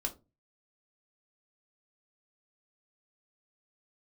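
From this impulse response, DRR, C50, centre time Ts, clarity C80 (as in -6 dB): 2.5 dB, 16.0 dB, 9 ms, 23.5 dB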